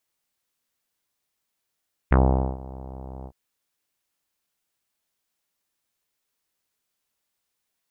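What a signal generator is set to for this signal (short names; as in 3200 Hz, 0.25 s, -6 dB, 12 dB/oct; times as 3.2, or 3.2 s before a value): synth note saw C2 24 dB/oct, low-pass 840 Hz, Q 2, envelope 1.5 oct, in 0.08 s, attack 10 ms, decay 0.45 s, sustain -22 dB, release 0.06 s, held 1.15 s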